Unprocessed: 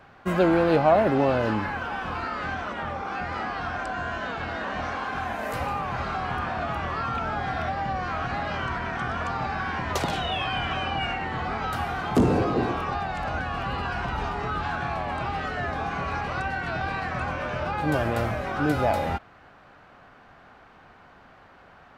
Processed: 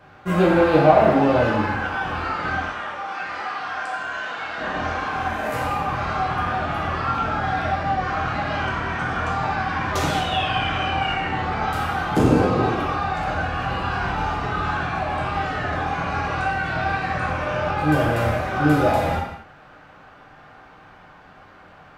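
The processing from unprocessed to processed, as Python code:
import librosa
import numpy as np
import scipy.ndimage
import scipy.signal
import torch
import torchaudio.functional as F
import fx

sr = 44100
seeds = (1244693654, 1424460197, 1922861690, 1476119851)

y = fx.highpass(x, sr, hz=980.0, slope=6, at=(2.65, 4.58))
y = fx.rev_gated(y, sr, seeds[0], gate_ms=290, shape='falling', drr_db=-4.5)
y = y * 10.0 ** (-1.0 / 20.0)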